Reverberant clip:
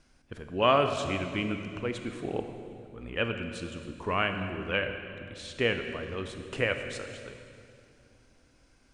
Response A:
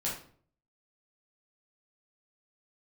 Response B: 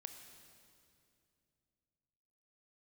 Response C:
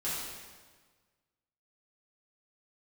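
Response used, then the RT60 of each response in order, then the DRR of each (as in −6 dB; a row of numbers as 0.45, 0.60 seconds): B; 0.50, 2.5, 1.5 seconds; −6.0, 6.0, −10.5 decibels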